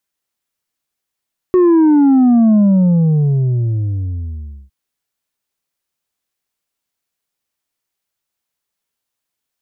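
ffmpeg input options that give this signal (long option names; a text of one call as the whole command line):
ffmpeg -f lavfi -i "aevalsrc='0.422*clip((3.16-t)/2.17,0,1)*tanh(1.58*sin(2*PI*370*3.16/log(65/370)*(exp(log(65/370)*t/3.16)-1)))/tanh(1.58)':duration=3.16:sample_rate=44100" out.wav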